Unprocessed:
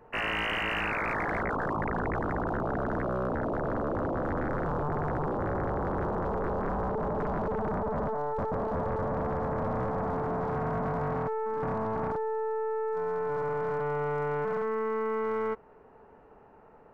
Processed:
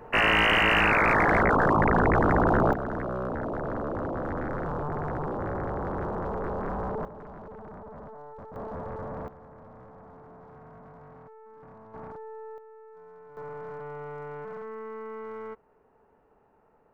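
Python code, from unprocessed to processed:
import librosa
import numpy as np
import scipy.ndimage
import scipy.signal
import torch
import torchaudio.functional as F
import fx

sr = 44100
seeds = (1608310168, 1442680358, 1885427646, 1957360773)

y = fx.gain(x, sr, db=fx.steps((0.0, 9.0), (2.73, -1.0), (7.05, -13.0), (8.56, -6.0), (9.28, -18.5), (11.94, -10.5), (12.58, -18.5), (13.37, -8.5)))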